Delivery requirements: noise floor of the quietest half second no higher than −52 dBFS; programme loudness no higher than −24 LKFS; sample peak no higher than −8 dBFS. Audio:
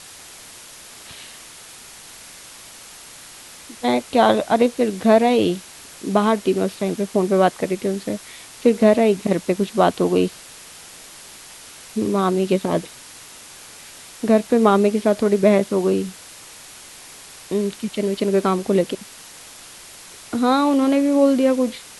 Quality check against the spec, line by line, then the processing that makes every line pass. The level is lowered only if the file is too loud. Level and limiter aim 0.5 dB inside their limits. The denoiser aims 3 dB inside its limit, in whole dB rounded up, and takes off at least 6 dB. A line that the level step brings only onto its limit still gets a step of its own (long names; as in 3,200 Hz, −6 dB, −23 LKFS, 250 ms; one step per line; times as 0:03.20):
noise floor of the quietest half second −41 dBFS: out of spec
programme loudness −19.0 LKFS: out of spec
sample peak −2.0 dBFS: out of spec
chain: broadband denoise 9 dB, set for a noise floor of −41 dBFS
level −5.5 dB
brickwall limiter −8.5 dBFS